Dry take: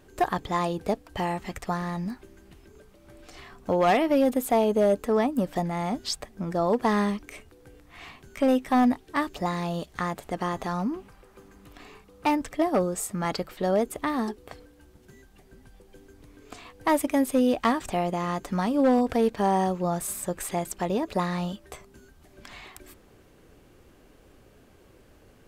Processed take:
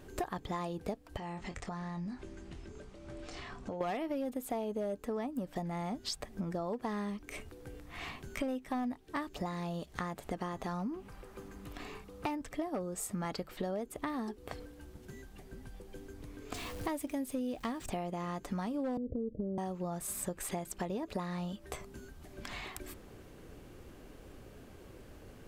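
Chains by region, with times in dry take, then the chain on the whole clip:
1.17–3.81 s: low-pass 8.3 kHz 24 dB/octave + doubling 24 ms -9.5 dB + compression 3:1, threshold -43 dBFS
16.54–17.90 s: jump at every zero crossing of -41.5 dBFS + peaking EQ 1.1 kHz -4.5 dB 2.3 oct
18.97–19.58 s: steep low-pass 590 Hz 72 dB/octave + compression 3:1, threshold -27 dBFS + bass shelf 430 Hz +6.5 dB
whole clip: bass shelf 390 Hz +3 dB; compression 6:1, threshold -36 dBFS; trim +1 dB

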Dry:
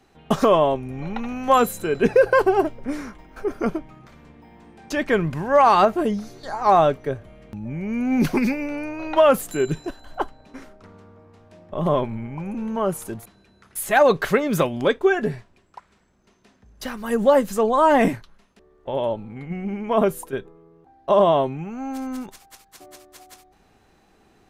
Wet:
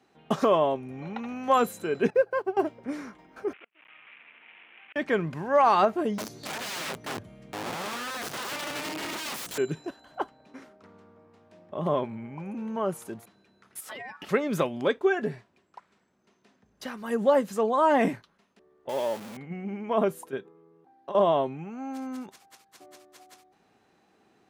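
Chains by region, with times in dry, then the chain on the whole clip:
2.10–2.57 s: block-companded coder 7-bit + treble shelf 2.6 kHz -7.5 dB + upward expansion 2.5:1, over -22 dBFS
3.53–4.96 s: one-bit delta coder 16 kbps, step -28.5 dBFS + band-pass filter 2.5 kHz, Q 3.2 + inverted gate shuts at -32 dBFS, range -33 dB
6.18–9.58 s: tone controls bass +11 dB, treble +10 dB + compression 4:1, threshold -18 dBFS + integer overflow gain 23 dB
13.80–14.29 s: compression 16:1, threshold -28 dBFS + ring modulator 1.3 kHz
18.89–19.37 s: jump at every zero crossing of -29 dBFS + high-pass 290 Hz 6 dB/octave + treble shelf 8.1 kHz +11 dB
20.37–21.15 s: high-pass 130 Hz + compression 4:1, threshold -27 dBFS + band-stop 640 Hz, Q 7.7
whole clip: high-pass 150 Hz 12 dB/octave; treble shelf 9 kHz -7.5 dB; trim -5.5 dB

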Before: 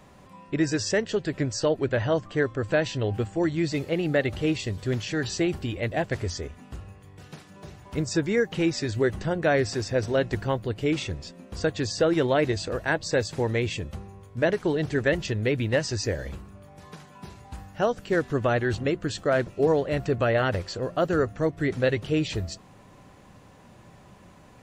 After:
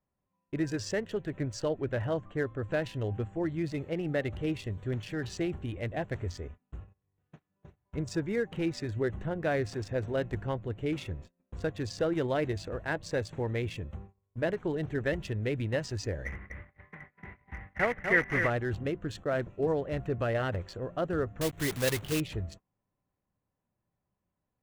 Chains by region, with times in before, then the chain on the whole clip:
16.25–18.50 s: block-companded coder 3-bit + resonant low-pass 2 kHz, resonance Q 15 + feedback delay 247 ms, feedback 20%, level -6 dB
21.41–22.21 s: block-companded coder 3-bit + treble shelf 2.6 kHz +8.5 dB
whole clip: local Wiener filter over 9 samples; gate -40 dBFS, range -27 dB; bass shelf 93 Hz +6.5 dB; trim -7.5 dB

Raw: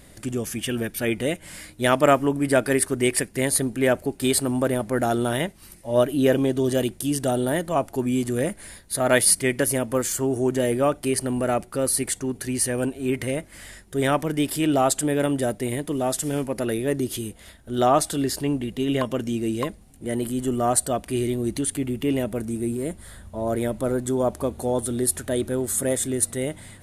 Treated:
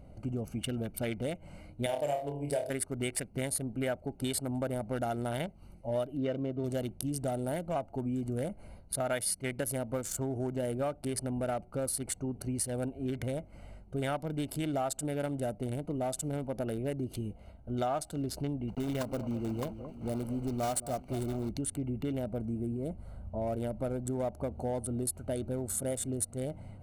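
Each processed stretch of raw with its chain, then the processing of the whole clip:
1.86–2.70 s: high-pass 43 Hz + static phaser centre 540 Hz, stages 4 + flutter echo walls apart 4.7 m, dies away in 0.44 s
6.17–6.64 s: low-pass 3 kHz + comb of notches 830 Hz
18.68–21.51 s: block-companded coder 3-bit + echo whose repeats swap between lows and highs 219 ms, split 1.9 kHz, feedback 67%, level -13.5 dB
whole clip: local Wiener filter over 25 samples; comb 1.4 ms, depth 42%; compression 4:1, threshold -29 dBFS; trim -2.5 dB

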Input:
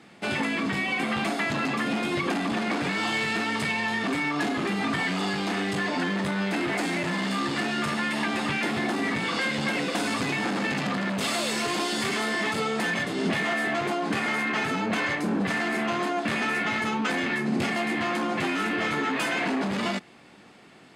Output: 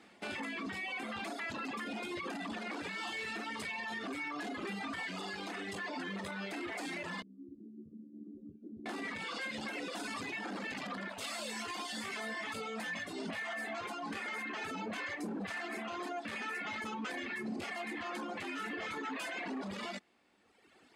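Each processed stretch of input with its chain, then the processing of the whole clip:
7.22–8.86 s: inverse Chebyshev low-pass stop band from 780 Hz, stop band 50 dB + bass shelf 230 Hz -10 dB
11.08–14.14 s: peaking EQ 360 Hz -8.5 dB 0.45 oct + doubling 18 ms -6.5 dB
whole clip: reverb removal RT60 1.6 s; peaking EQ 140 Hz -14.5 dB 0.55 oct; peak limiter -25.5 dBFS; trim -6.5 dB

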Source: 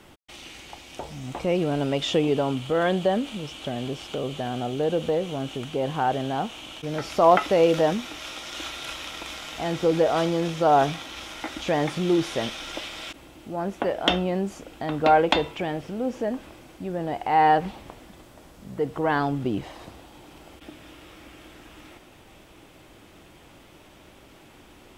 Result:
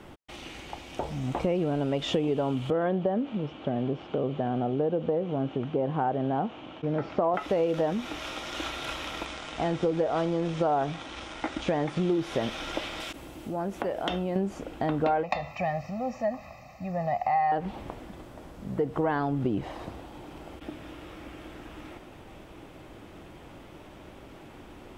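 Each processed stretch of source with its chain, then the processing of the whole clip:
2.70–7.34 s: high-pass 110 Hz + tape spacing loss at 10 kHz 31 dB
9.25–12.11 s: companding laws mixed up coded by A + brick-wall FIR low-pass 10 kHz
13.00–14.36 s: compression 2:1, threshold -36 dBFS + treble shelf 5.3 kHz +10.5 dB
15.23–17.52 s: high-pass 200 Hz 6 dB/octave + static phaser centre 2.2 kHz, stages 8 + comb 1.6 ms, depth 86%
whole clip: treble shelf 2.4 kHz -10.5 dB; compression 6:1, threshold -28 dBFS; trim +4.5 dB

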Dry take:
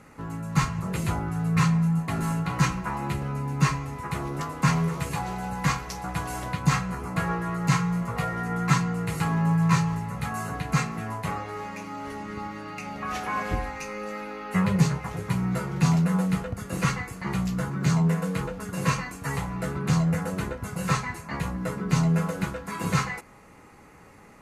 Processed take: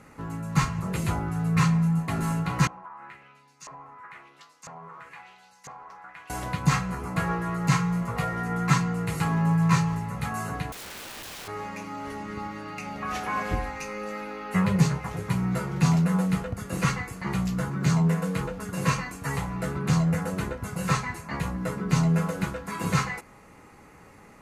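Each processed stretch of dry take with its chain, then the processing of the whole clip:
2.67–6.30 s: peaking EQ 4.5 kHz -5.5 dB 2.8 oct + LFO band-pass saw up 1 Hz 640–6700 Hz + compression 5:1, threshold -39 dBFS
10.72–11.48 s: compression 16:1, threshold -30 dBFS + integer overflow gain 35.5 dB
whole clip: none

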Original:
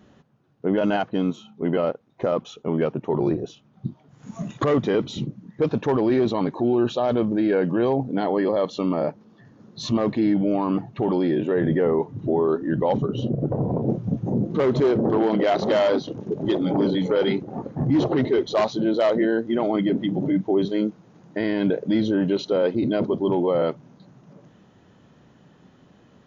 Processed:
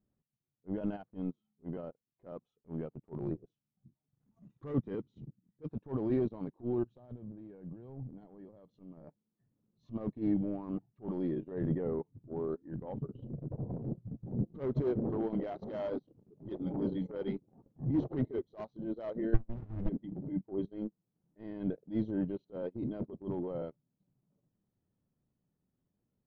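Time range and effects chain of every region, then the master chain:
4.42–5.77 s: high-pass 51 Hz + peaking EQ 650 Hz -13.5 dB 0.21 oct
6.83–9.04 s: peaking EQ 110 Hz +9.5 dB 1.8 oct + compression 12:1, threshold -23 dBFS
12.62–13.76 s: low-pass 3.3 kHz 24 dB/octave + hum notches 60/120/180/240/300 Hz
19.34–19.89 s: distance through air 250 m + sliding maximum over 65 samples
whole clip: transient shaper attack -11 dB, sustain -7 dB; tilt EQ -3.5 dB/octave; upward expansion 2.5:1, over -27 dBFS; trim -8 dB

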